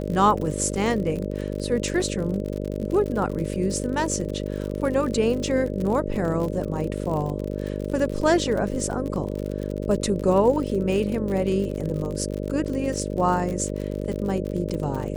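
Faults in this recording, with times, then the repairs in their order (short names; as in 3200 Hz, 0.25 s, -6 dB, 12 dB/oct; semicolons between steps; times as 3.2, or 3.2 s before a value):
buzz 50 Hz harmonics 12 -29 dBFS
crackle 59/s -29 dBFS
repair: de-click; de-hum 50 Hz, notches 12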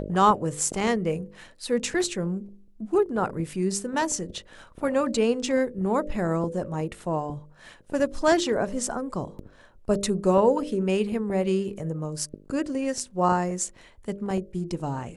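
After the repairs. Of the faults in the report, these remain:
none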